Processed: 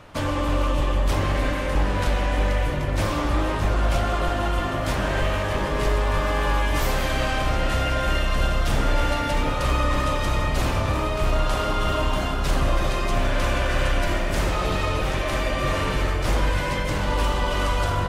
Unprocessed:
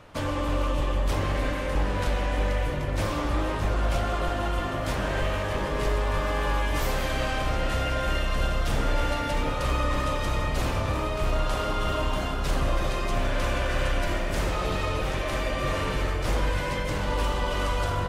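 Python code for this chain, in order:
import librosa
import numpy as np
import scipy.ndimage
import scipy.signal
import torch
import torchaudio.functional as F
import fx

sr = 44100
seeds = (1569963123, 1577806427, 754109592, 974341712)

y = fx.peak_eq(x, sr, hz=480.0, db=-3.0, octaves=0.26)
y = F.gain(torch.from_numpy(y), 4.0).numpy()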